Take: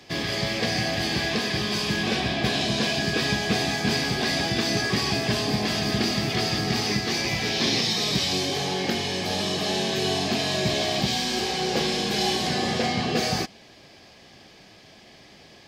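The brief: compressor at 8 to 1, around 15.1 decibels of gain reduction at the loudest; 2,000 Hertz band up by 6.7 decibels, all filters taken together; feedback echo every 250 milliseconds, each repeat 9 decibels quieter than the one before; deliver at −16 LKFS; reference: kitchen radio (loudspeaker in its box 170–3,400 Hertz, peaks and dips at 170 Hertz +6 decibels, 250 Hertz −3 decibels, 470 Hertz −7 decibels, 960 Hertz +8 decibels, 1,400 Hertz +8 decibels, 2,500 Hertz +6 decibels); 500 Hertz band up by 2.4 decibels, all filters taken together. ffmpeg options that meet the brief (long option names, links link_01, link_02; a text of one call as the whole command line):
ffmpeg -i in.wav -af "equalizer=frequency=500:width_type=o:gain=6,equalizer=frequency=2000:width_type=o:gain=3,acompressor=threshold=-34dB:ratio=8,highpass=170,equalizer=frequency=170:width_type=q:width=4:gain=6,equalizer=frequency=250:width_type=q:width=4:gain=-3,equalizer=frequency=470:width_type=q:width=4:gain=-7,equalizer=frequency=960:width_type=q:width=4:gain=8,equalizer=frequency=1400:width_type=q:width=4:gain=8,equalizer=frequency=2500:width_type=q:width=4:gain=6,lowpass=frequency=3400:width=0.5412,lowpass=frequency=3400:width=1.3066,aecho=1:1:250|500|750|1000:0.355|0.124|0.0435|0.0152,volume=19.5dB" out.wav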